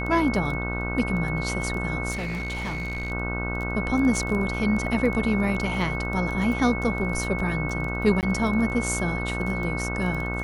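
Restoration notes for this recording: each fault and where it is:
buzz 60 Hz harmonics 26 -30 dBFS
crackle 11/s -29 dBFS
tone 2200 Hz -31 dBFS
2.11–3.12 clipped -26.5 dBFS
8.21–8.23 gap 18 ms

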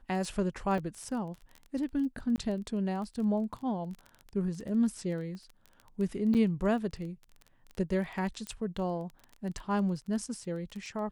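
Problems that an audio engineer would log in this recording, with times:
crackle 17/s -37 dBFS
0.78 gap 2.7 ms
2.36–2.38 gap 19 ms
5.35 pop -34 dBFS
6.34–6.35 gap 7.9 ms
8.47 pop -23 dBFS

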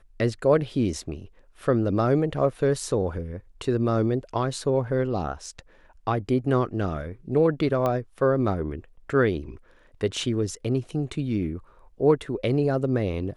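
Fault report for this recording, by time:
7.86 pop -14 dBFS

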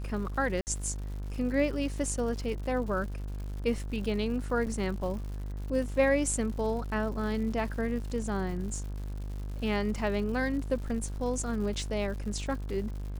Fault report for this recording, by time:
buzz 50 Hz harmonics 35 -36 dBFS
crackle 200/s -40 dBFS
0.61–0.67 gap 59 ms
4.66–4.67 gap 7.3 ms

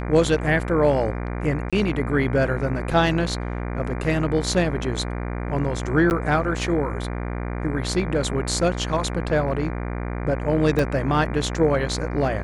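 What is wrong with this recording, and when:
buzz 60 Hz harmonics 40 -28 dBFS
1.7–1.73 gap 26 ms
6.1–6.11 gap 9.9 ms
10.79 gap 3.2 ms

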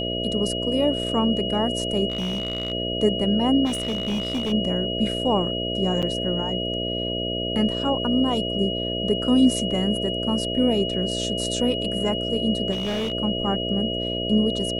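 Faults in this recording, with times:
buzz 60 Hz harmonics 11 -29 dBFS
tone 2900 Hz -28 dBFS
2.1–2.72 clipped -22.5 dBFS
3.65–4.53 clipped -21.5 dBFS
6.02–6.03 gap 6.9 ms
12.71–13.12 clipped -22.5 dBFS

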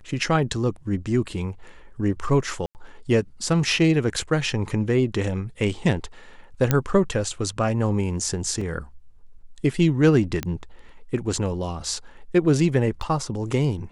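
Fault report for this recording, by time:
2.66–2.75 gap 89 ms
6.71 pop -5 dBFS
8.61 gap 3.9 ms
10.43 pop -12 dBFS
13.02 gap 4.3 ms

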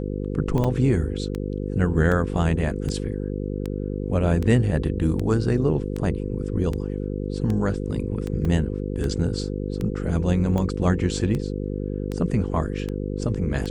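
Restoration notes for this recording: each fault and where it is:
buzz 50 Hz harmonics 10 -28 dBFS
tick 78 rpm -16 dBFS
0.64 gap 4.7 ms
8.45 gap 2.3 ms

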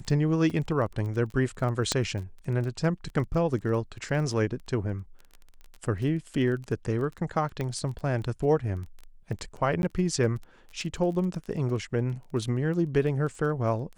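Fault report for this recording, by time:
crackle 17/s -35 dBFS
0.5 gap 4.2 ms
1.92 pop -11 dBFS
7.61 pop -19 dBFS
9.82–9.83 gap 11 ms

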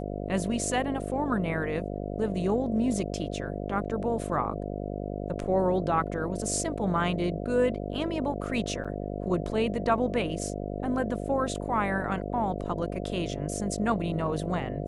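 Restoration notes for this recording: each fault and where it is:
buzz 50 Hz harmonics 14 -34 dBFS
8.84–8.85 gap 6.1 ms

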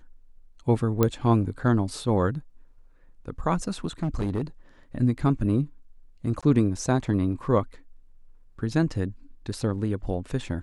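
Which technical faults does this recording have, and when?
1.03 pop -8 dBFS
4.03–4.43 clipped -22.5 dBFS
6.41–6.43 gap 16 ms

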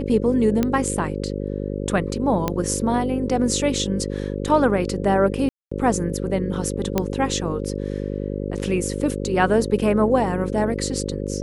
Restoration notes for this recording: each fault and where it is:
buzz 50 Hz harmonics 11 -27 dBFS
0.63 pop -8 dBFS
2.48 pop -8 dBFS
5.49–5.71 gap 0.225 s
6.98 pop -6 dBFS

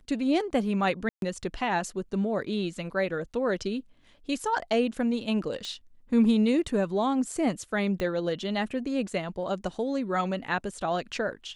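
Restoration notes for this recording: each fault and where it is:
1.09–1.22 gap 0.132 s
5.65 pop -23 dBFS
8 pop -19 dBFS

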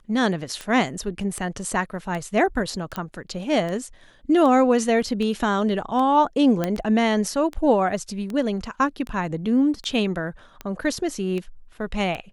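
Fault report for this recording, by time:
tick 78 rpm -18 dBFS
2.96 pop -14 dBFS
6.64 pop -10 dBFS

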